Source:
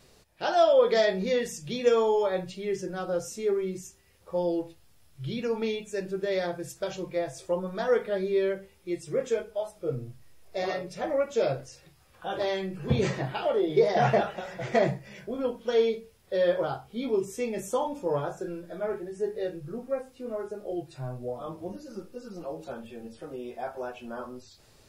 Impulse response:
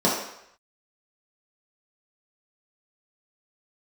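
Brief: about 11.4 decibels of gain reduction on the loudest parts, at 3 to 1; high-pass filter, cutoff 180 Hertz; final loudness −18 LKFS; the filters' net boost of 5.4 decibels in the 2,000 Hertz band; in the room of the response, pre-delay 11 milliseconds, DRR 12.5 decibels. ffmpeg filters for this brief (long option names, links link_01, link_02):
-filter_complex "[0:a]highpass=180,equalizer=frequency=2000:width_type=o:gain=6.5,acompressor=threshold=-32dB:ratio=3,asplit=2[link_01][link_02];[1:a]atrim=start_sample=2205,adelay=11[link_03];[link_02][link_03]afir=irnorm=-1:irlink=0,volume=-29.5dB[link_04];[link_01][link_04]amix=inputs=2:normalize=0,volume=17dB"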